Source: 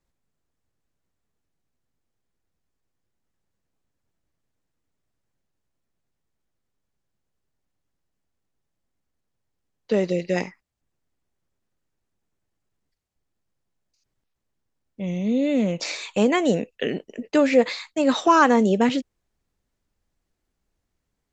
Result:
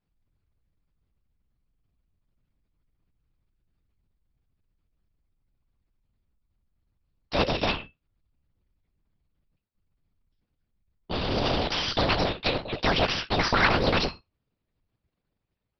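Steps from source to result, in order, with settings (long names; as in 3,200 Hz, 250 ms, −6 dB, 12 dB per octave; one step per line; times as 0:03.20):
noise gate with hold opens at −39 dBFS
in parallel at −11.5 dB: comparator with hysteresis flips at −25.5 dBFS
on the sum: tuned comb filter 390 Hz, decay 0.24 s, harmonics all, mix 80%
linear-prediction vocoder at 8 kHz whisper
wrong playback speed 33 rpm record played at 45 rpm
every bin compressed towards the loudest bin 2 to 1
level +5 dB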